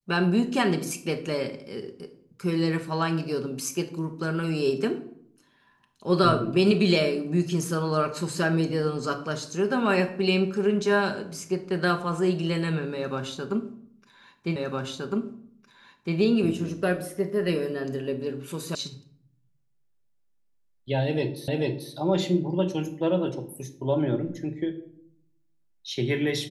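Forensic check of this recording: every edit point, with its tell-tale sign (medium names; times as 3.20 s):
14.56 s: repeat of the last 1.61 s
18.75 s: sound stops dead
21.48 s: repeat of the last 0.44 s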